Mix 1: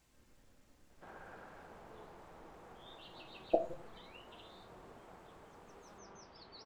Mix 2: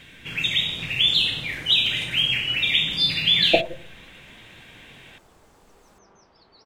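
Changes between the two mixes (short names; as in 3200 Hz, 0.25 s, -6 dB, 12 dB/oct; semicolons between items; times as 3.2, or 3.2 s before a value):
speech +11.0 dB; first sound: unmuted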